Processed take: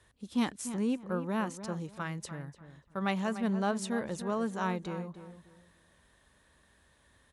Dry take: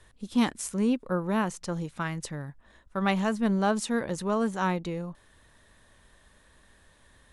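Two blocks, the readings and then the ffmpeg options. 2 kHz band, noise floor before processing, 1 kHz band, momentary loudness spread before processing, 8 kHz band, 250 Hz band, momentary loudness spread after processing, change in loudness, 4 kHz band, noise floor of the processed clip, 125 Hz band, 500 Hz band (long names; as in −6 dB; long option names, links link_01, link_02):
−5.5 dB, −60 dBFS, −5.0 dB, 11 LU, −5.5 dB, −5.0 dB, 11 LU, −5.0 dB, −5.5 dB, −67 dBFS, −5.0 dB, −5.0 dB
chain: -filter_complex "[0:a]highpass=50,asplit=2[link_01][link_02];[link_02]adelay=294,lowpass=frequency=2100:poles=1,volume=-11dB,asplit=2[link_03][link_04];[link_04]adelay=294,lowpass=frequency=2100:poles=1,volume=0.27,asplit=2[link_05][link_06];[link_06]adelay=294,lowpass=frequency=2100:poles=1,volume=0.27[link_07];[link_03][link_05][link_07]amix=inputs=3:normalize=0[link_08];[link_01][link_08]amix=inputs=2:normalize=0,volume=-5.5dB"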